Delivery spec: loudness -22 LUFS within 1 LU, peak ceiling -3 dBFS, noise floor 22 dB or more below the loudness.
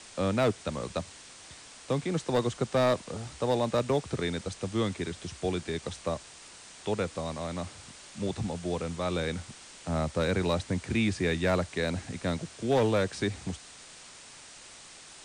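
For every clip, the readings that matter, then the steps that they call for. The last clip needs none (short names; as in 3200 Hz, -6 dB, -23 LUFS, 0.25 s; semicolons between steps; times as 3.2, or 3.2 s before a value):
clipped 0.4%; flat tops at -19.0 dBFS; noise floor -50 dBFS; noise floor target -53 dBFS; loudness -31.0 LUFS; peak -19.0 dBFS; loudness target -22.0 LUFS
-> clip repair -19 dBFS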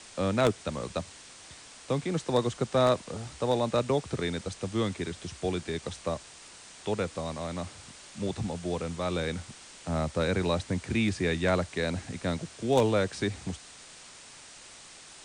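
clipped 0.0%; noise floor -50 dBFS; noise floor target -53 dBFS
-> denoiser 6 dB, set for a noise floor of -50 dBFS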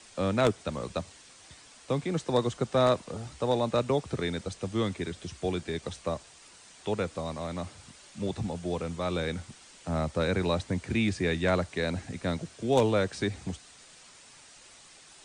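noise floor -54 dBFS; loudness -30.5 LUFS; peak -10.0 dBFS; loudness target -22.0 LUFS
-> gain +8.5 dB; limiter -3 dBFS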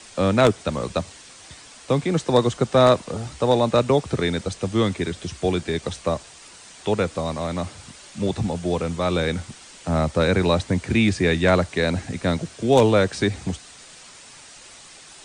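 loudness -22.0 LUFS; peak -3.0 dBFS; noise floor -45 dBFS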